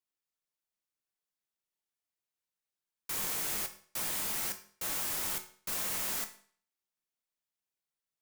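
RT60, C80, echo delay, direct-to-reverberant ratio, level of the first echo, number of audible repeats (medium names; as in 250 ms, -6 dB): 0.50 s, 16.0 dB, no echo, 6.0 dB, no echo, no echo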